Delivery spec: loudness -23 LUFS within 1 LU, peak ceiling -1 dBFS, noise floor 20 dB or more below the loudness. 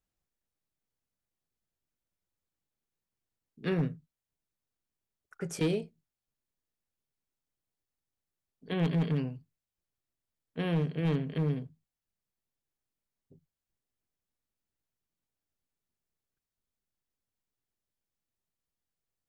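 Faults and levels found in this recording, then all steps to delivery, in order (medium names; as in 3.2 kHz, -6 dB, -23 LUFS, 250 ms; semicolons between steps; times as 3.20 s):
clipped samples 0.3%; clipping level -22.5 dBFS; loudness -32.5 LUFS; peak level -22.5 dBFS; loudness target -23.0 LUFS
-> clip repair -22.5 dBFS; trim +9.5 dB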